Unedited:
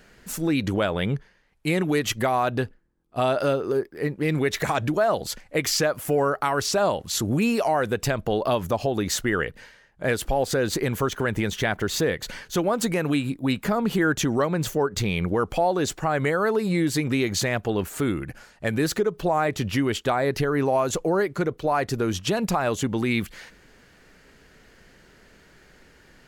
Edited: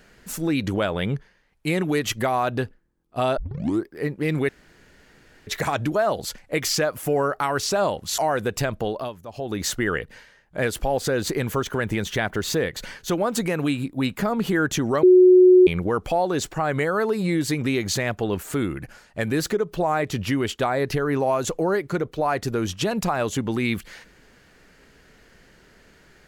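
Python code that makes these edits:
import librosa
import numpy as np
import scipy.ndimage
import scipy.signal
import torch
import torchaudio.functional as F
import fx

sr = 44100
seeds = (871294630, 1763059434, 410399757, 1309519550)

y = fx.edit(x, sr, fx.tape_start(start_s=3.37, length_s=0.49),
    fx.insert_room_tone(at_s=4.49, length_s=0.98),
    fx.cut(start_s=7.2, length_s=0.44),
    fx.fade_down_up(start_s=8.22, length_s=0.91, db=-16.5, fade_s=0.42),
    fx.bleep(start_s=14.49, length_s=0.64, hz=366.0, db=-8.5), tone=tone)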